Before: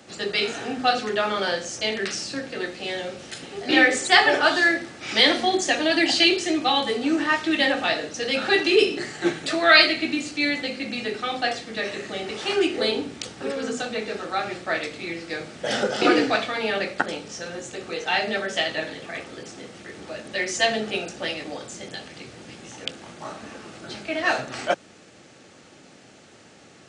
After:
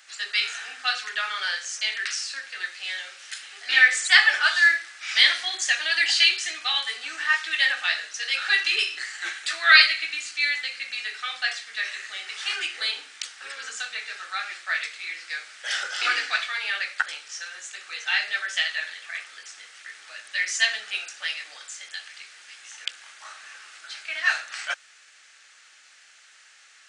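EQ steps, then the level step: resonant high-pass 1600 Hz, resonance Q 2; high shelf 3100 Hz +7.5 dB; -5.5 dB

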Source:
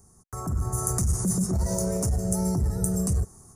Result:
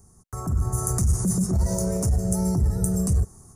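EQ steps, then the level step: low shelf 190 Hz +4.5 dB; 0.0 dB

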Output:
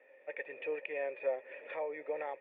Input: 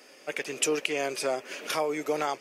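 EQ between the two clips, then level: vocal tract filter e; tilt +2 dB/oct; bell 900 Hz +12 dB 0.43 oct; +1.0 dB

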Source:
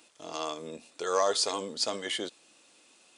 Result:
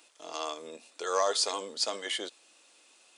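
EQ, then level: Bessel high-pass 430 Hz, order 2; 0.0 dB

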